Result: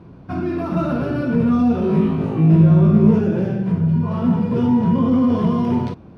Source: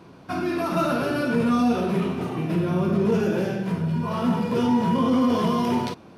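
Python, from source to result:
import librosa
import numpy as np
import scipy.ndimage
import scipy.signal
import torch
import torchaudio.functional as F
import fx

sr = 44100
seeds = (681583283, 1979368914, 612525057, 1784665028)

y = fx.riaa(x, sr, side='playback')
y = fx.room_flutter(y, sr, wall_m=3.2, rt60_s=0.41, at=(1.8, 3.19))
y = y * librosa.db_to_amplitude(-2.0)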